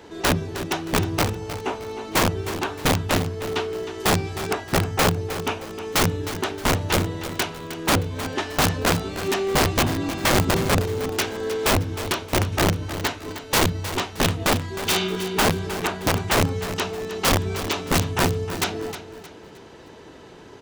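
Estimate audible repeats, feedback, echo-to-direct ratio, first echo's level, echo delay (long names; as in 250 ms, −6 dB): 3, 35%, −11.5 dB, −12.0 dB, 311 ms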